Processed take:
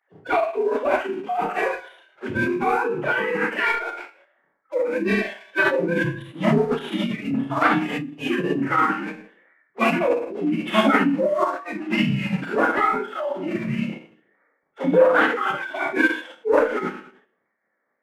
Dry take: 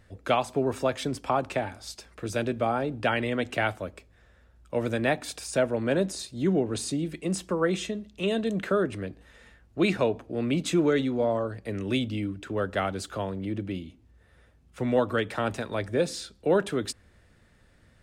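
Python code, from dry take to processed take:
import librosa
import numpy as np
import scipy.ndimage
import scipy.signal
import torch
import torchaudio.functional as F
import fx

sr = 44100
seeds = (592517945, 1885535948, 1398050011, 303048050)

y = fx.sine_speech(x, sr)
y = fx.dynamic_eq(y, sr, hz=210.0, q=4.4, threshold_db=-49.0, ratio=4.0, max_db=5)
y = fx.rider(y, sr, range_db=5, speed_s=2.0)
y = fx.leveller(y, sr, passes=1)
y = fx.chorus_voices(y, sr, voices=6, hz=0.46, base_ms=29, depth_ms=3.1, mix_pct=20)
y = fx.rev_schroeder(y, sr, rt60_s=0.58, comb_ms=25, drr_db=-3.5)
y = fx.pitch_keep_formants(y, sr, semitones=-8.0)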